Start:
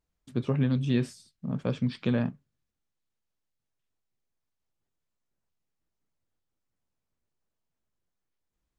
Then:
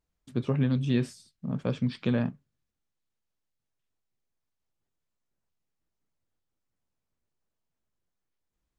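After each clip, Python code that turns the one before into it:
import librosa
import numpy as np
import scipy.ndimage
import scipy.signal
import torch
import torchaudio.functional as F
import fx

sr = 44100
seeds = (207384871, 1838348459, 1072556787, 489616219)

y = x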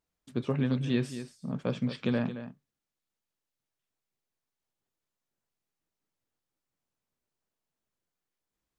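y = fx.low_shelf(x, sr, hz=110.0, db=-11.0)
y = y + 10.0 ** (-11.5 / 20.0) * np.pad(y, (int(222 * sr / 1000.0), 0))[:len(y)]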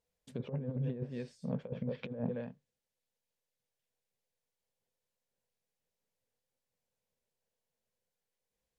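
y = fx.env_lowpass_down(x, sr, base_hz=910.0, full_db=-26.0)
y = fx.graphic_eq_31(y, sr, hz=(315, 500, 1250), db=(-11, 11, -9))
y = fx.over_compress(y, sr, threshold_db=-31.0, ratio=-0.5)
y = y * librosa.db_to_amplitude(-4.5)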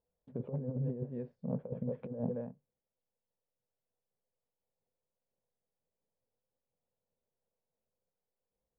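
y = scipy.signal.sosfilt(scipy.signal.cheby1(2, 1.0, 780.0, 'lowpass', fs=sr, output='sos'), x)
y = y * librosa.db_to_amplitude(1.0)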